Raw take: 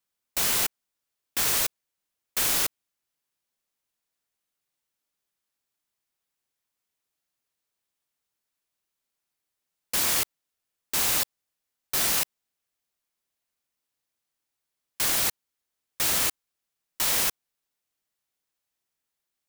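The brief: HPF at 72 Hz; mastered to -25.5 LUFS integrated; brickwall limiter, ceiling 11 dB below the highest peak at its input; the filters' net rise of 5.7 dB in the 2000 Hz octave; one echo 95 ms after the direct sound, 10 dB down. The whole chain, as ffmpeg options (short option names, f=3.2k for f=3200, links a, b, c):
-af "highpass=72,equalizer=f=2k:t=o:g=7,alimiter=limit=-21dB:level=0:latency=1,aecho=1:1:95:0.316,volume=5dB"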